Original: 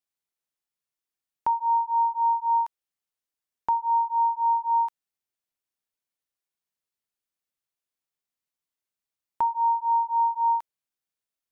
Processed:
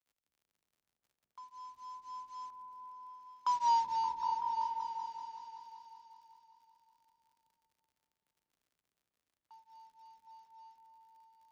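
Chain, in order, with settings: CVSD 32 kbps; Doppler pass-by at 3.65, 21 m/s, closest 3.8 m; crackle 69/s -58 dBFS; on a send: repeats that get brighter 0.191 s, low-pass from 200 Hz, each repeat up 1 oct, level 0 dB; on the sum: frequency shift +23 Hz; gain -4.5 dB

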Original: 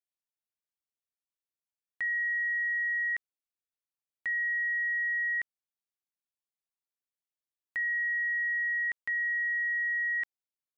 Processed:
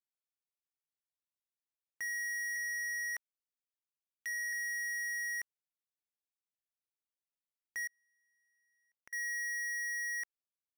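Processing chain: 2.56–4.53 HPF 1100 Hz 24 dB/oct; sample leveller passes 5; limiter -36.5 dBFS, peak gain reduction 10 dB; 7.87–9.13 flipped gate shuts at -50 dBFS, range -41 dB

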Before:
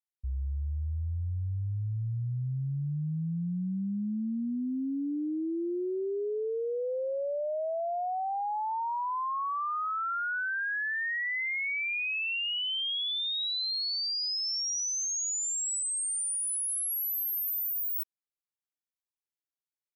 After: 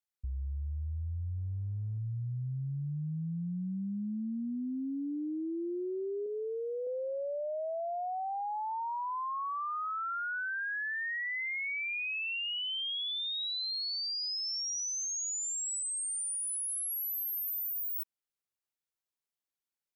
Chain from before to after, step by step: 6.26–6.87 tilt +2 dB/oct; compressor, threshold -34 dBFS, peak gain reduction 3.5 dB; 1.38–1.98 running maximum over 17 samples

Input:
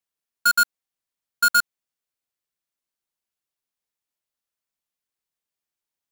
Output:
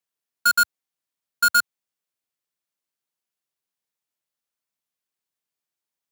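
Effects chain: HPF 90 Hz 24 dB/oct

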